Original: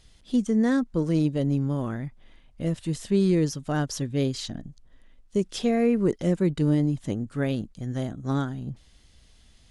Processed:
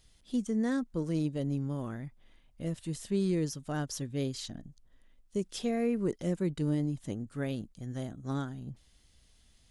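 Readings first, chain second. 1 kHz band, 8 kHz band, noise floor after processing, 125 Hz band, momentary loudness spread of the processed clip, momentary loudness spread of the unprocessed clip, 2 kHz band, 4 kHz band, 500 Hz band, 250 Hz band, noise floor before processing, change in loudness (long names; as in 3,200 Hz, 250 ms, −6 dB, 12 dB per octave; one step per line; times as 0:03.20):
−8.0 dB, −4.5 dB, −64 dBFS, −8.0 dB, 10 LU, 10 LU, −7.5 dB, −6.5 dB, −8.0 dB, −8.0 dB, −56 dBFS, −8.0 dB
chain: high-shelf EQ 9,500 Hz +10.5 dB
level −8 dB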